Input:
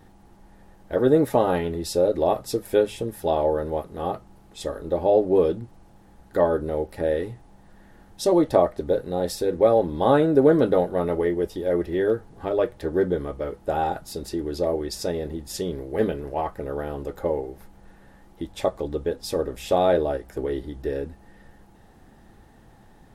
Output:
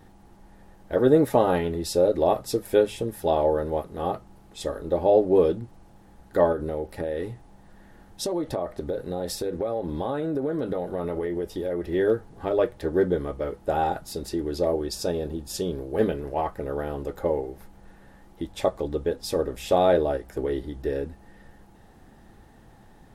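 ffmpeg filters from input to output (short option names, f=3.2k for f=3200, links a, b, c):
-filter_complex "[0:a]asettb=1/sr,asplit=3[a][b][c];[a]atrim=end=6.524[d];[b]atrim=start=6.52:end=11.86,asetpts=PTS-STARTPTS,afade=t=in:d=0.004:c=qsin,afade=t=out:st=5.336:d=0.004:c=qsin,acompressor=threshold=-24dB:ratio=6:attack=3.2:release=140:knee=1:detection=peak[e];[c]atrim=start=11.856[f];[d][e]acrossfade=d=0.004:c1=hsin:c2=qsin[g];[g][f]acrossfade=d=0.004:c1=qsin:c2=hsin,asettb=1/sr,asplit=3[h][i][j];[h]atrim=end=14.724[k];[i]atrim=start=14.72:end=16.01,asetpts=PTS-STARTPTS,afade=t=in:d=0.004:c=qsin,afade=t=out:st=1.286:d=0.004:c=qsin,bandreject=f=2k:w=5[l];[j]atrim=start=16.006[m];[k][l]acrossfade=d=0.004:c1=hsin:c2=qsin[n];[n][m]acrossfade=d=0.004:c1=qsin:c2=hsin"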